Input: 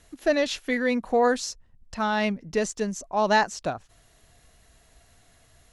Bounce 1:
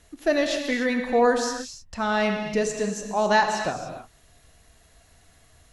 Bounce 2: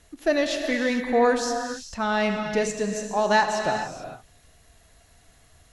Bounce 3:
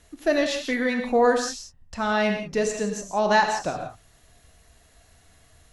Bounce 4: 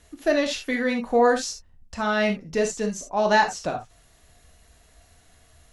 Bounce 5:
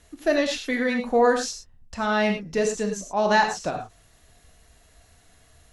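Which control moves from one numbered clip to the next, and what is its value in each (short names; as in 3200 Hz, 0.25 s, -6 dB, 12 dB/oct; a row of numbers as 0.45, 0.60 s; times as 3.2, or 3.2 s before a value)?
non-linear reverb, gate: 320, 470, 200, 90, 130 ms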